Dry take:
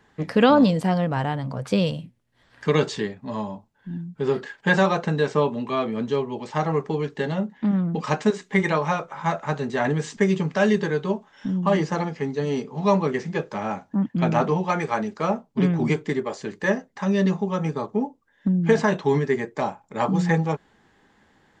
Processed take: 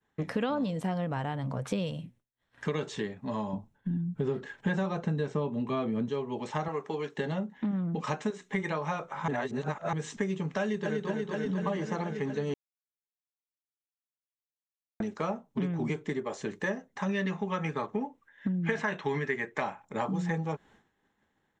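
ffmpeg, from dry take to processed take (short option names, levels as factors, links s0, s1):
-filter_complex "[0:a]asettb=1/sr,asplit=3[s0][s1][s2];[s0]atrim=end=3.534[s3];[s1]atrim=start=3.53:end=6.09,asetpts=PTS-STARTPTS,afade=t=in:d=0.004:c=qsin,afade=t=out:st=2.556:d=0.004:c=qsin,lowshelf=f=330:g=10.5[s4];[s2]atrim=start=6.086[s5];[s3][s4]acrossfade=d=0.004:c1=hsin:c2=qsin[s6];[s6][s5]acrossfade=d=0.004:c1=qsin:c2=hsin,asettb=1/sr,asplit=3[s7][s8][s9];[s7]atrim=end=6.684[s10];[s8]atrim=start=6.68:end=7.18,asetpts=PTS-STARTPTS,afade=t=in:d=0.004:c=qsin,afade=t=out:st=0.496:d=0.004:c=qsin,highpass=f=510:p=1[s11];[s9]atrim=start=7.176[s12];[s10][s11]acrossfade=d=0.004:c1=hsin:c2=qsin[s13];[s13][s12]acrossfade=d=0.004:c1=qsin:c2=hsin,asplit=2[s14][s15];[s15]afade=t=in:st=10.61:d=0.01,afade=t=out:st=11.09:d=0.01,aecho=0:1:240|480|720|960|1200|1440|1680|1920|2160|2400|2640|2880:0.595662|0.446747|0.33506|0.251295|0.188471|0.141353|0.106015|0.0795113|0.0596335|0.0447251|0.0335438|0.0251579[s16];[s14][s16]amix=inputs=2:normalize=0,asettb=1/sr,asplit=3[s17][s18][s19];[s17]atrim=end=17.094[s20];[s18]atrim=start=17.09:end=19.85,asetpts=PTS-STARTPTS,afade=t=in:d=0.004:c=qsin,afade=t=out:st=2.756:d=0.004:c=qsin,equalizer=f=2000:t=o:w=1.7:g=11.5[s21];[s19]atrim=start=19.846[s22];[s20][s21]acrossfade=d=0.004:c1=hsin:c2=qsin[s23];[s23][s22]acrossfade=d=0.004:c1=qsin:c2=hsin,asplit=5[s24][s25][s26][s27][s28];[s24]atrim=end=9.282[s29];[s25]atrim=start=9.278:end=9.932,asetpts=PTS-STARTPTS,areverse[s30];[s26]atrim=start=9.928:end=12.54,asetpts=PTS-STARTPTS,afade=t=out:st=2.608:d=0.004:c=hsin[s31];[s27]atrim=start=12.54:end=15,asetpts=PTS-STARTPTS,volume=0[s32];[s28]atrim=start=15,asetpts=PTS-STARTPTS,afade=t=in:d=0.004:c=hsin[s33];[s29][s30]acrossfade=d=0.004:c1=hsin:c2=hsin[s34];[s31][s32][s33]concat=n=3:v=0:a=1[s35];[s34][s35]acrossfade=d=0.004:c1=hsin:c2=hsin,bandreject=f=4700:w=6.1,agate=range=0.0224:threshold=0.00355:ratio=3:detection=peak,acompressor=threshold=0.0398:ratio=4,volume=0.841"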